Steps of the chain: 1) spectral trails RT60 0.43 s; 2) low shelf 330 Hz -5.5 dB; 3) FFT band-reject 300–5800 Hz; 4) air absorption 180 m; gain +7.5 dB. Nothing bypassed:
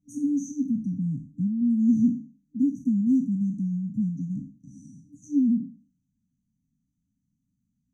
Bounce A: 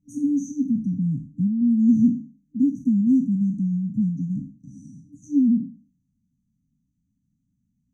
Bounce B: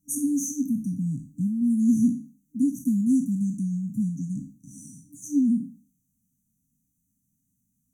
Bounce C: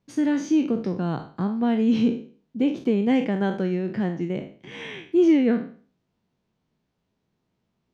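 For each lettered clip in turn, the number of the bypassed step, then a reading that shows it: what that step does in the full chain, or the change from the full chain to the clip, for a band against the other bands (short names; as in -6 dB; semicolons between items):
2, loudness change +3.5 LU; 4, momentary loudness spread change +8 LU; 3, momentary loudness spread change +4 LU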